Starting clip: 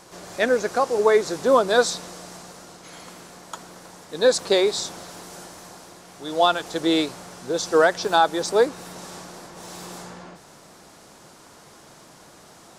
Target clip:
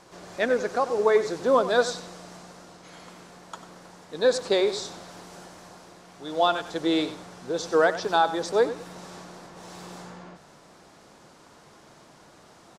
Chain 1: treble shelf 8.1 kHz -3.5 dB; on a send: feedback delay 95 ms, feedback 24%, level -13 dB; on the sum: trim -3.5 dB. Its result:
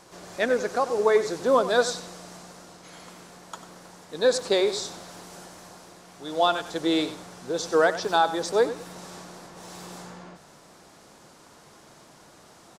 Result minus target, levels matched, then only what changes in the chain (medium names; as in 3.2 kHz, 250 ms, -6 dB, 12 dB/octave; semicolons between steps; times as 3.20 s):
8 kHz band +3.5 dB
change: treble shelf 8.1 kHz -12.5 dB